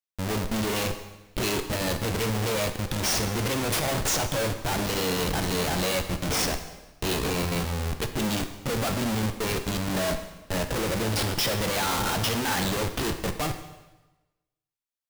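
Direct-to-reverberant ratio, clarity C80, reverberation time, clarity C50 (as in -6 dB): 7.0 dB, 11.5 dB, 1.1 s, 9.5 dB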